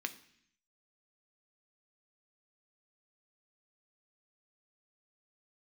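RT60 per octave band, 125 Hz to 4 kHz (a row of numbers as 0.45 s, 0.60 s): 0.90 s, 0.85 s, 0.65 s, 0.65 s, 0.85 s, 0.80 s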